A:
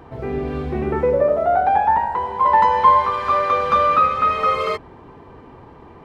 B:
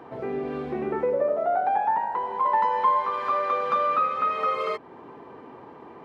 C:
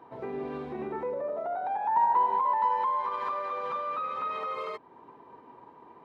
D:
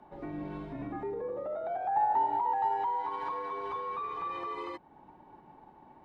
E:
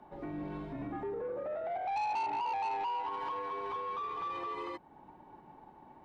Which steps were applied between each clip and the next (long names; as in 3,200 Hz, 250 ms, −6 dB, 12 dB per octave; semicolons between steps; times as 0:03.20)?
high-pass filter 230 Hz 12 dB per octave; high-shelf EQ 3,600 Hz −7.5 dB; downward compressor 1.5 to 1, threshold −33 dBFS, peak gain reduction 9 dB
brickwall limiter −23 dBFS, peak gain reduction 11 dB; hollow resonant body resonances 960/3,800 Hz, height 12 dB, ringing for 45 ms; expander for the loud parts 1.5 to 1, over −43 dBFS
frequency shifter −94 Hz; level −3.5 dB
soft clipping −31 dBFS, distortion −10 dB